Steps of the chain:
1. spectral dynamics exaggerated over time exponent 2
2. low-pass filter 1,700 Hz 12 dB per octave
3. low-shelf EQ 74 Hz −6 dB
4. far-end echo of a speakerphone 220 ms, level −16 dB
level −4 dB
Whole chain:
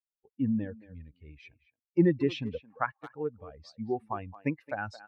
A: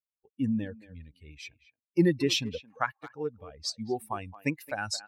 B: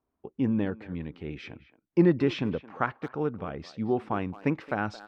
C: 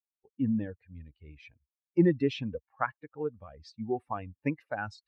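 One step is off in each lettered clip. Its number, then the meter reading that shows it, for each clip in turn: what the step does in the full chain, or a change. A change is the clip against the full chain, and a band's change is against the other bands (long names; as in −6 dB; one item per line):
2, 4 kHz band +13.5 dB
1, change in momentary loudness spread −8 LU
4, change in momentary loudness spread +1 LU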